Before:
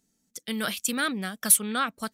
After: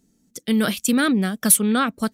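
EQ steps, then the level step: low shelf 220 Hz +9.5 dB; bell 330 Hz +6.5 dB 1.7 oct; +3.5 dB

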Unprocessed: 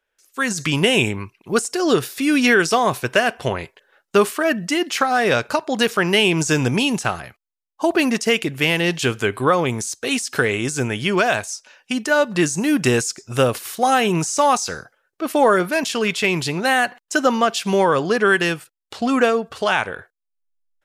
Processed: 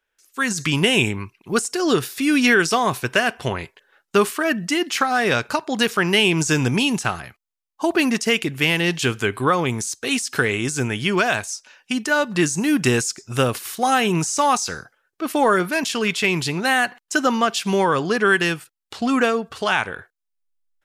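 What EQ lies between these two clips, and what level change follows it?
bell 570 Hz -5 dB 0.79 oct; 0.0 dB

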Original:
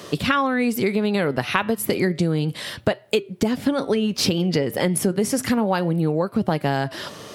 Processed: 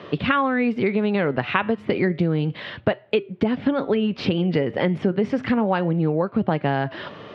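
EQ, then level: HPF 62 Hz; LPF 3100 Hz 24 dB/oct; 0.0 dB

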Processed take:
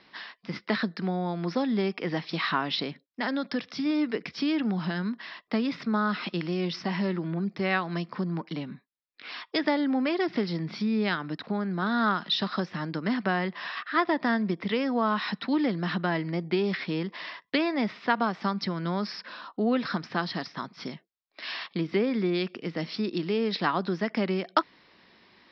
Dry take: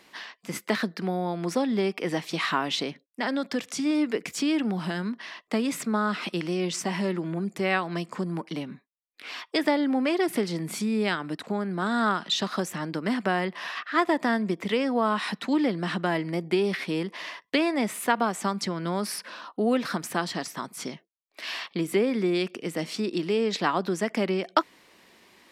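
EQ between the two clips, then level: rippled Chebyshev low-pass 5400 Hz, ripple 3 dB; tone controls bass +14 dB, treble +1 dB; low shelf 220 Hz -11 dB; 0.0 dB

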